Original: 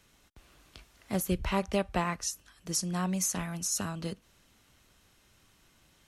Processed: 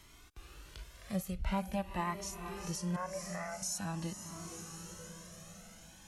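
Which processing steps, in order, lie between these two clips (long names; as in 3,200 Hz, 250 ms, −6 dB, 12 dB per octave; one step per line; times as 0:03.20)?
0:02.96–0:03.62: elliptic band-pass filter 530–2,100 Hz
feedback delay with all-pass diffusion 452 ms, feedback 59%, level −15 dB
downward compressor 2 to 1, threshold −47 dBFS, peak gain reduction 13 dB
harmonic and percussive parts rebalanced percussive −11 dB
flanger whose copies keep moving one way rising 0.47 Hz
level +13 dB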